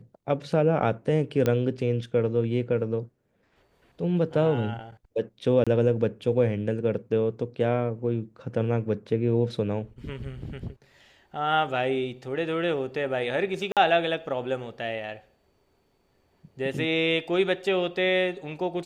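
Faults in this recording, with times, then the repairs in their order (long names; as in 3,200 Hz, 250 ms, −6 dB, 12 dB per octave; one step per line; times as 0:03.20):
0:01.46: click −12 dBFS
0:05.64–0:05.67: drop-out 26 ms
0:13.72–0:13.77: drop-out 47 ms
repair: click removal
repair the gap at 0:05.64, 26 ms
repair the gap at 0:13.72, 47 ms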